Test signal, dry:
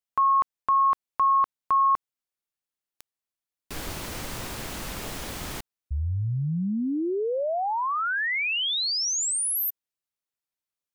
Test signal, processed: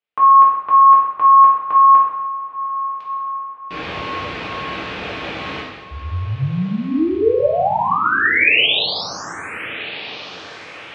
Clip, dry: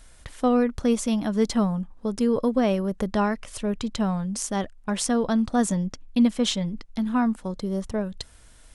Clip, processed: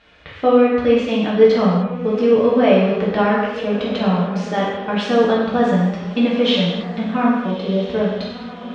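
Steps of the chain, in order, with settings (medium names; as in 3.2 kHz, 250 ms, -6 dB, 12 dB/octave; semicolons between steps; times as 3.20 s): cabinet simulation 110–3500 Hz, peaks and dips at 150 Hz -5 dB, 220 Hz -6 dB, 980 Hz -4 dB, 2.5 kHz +3 dB; echo that smears into a reverb 1305 ms, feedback 44%, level -14 dB; gated-style reverb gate 330 ms falling, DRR -6 dB; trim +4 dB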